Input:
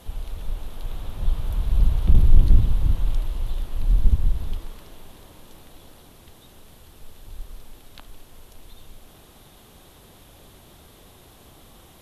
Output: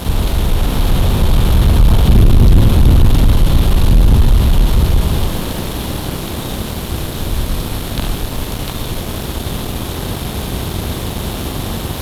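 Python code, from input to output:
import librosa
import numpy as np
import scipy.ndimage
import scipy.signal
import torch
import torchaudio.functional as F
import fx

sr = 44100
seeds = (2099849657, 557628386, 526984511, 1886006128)

y = fx.bin_compress(x, sr, power=0.6)
y = fx.highpass(y, sr, hz=110.0, slope=6)
y = fx.echo_multitap(y, sr, ms=(45, 72, 194, 479, 649, 701), db=(-5.0, -7.5, -17.5, -19.0, -11.0, -4.5))
y = fx.leveller(y, sr, passes=3)
y = y * 10.0 ** (5.5 / 20.0)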